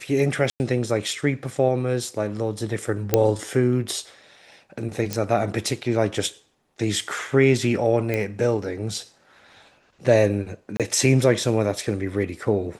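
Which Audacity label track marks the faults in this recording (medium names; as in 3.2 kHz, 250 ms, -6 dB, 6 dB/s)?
0.500000	0.600000	dropout 99 ms
3.140000	3.140000	pop -3 dBFS
5.130000	5.130000	pop -10 dBFS
8.140000	8.140000	pop -13 dBFS
10.770000	10.800000	dropout 27 ms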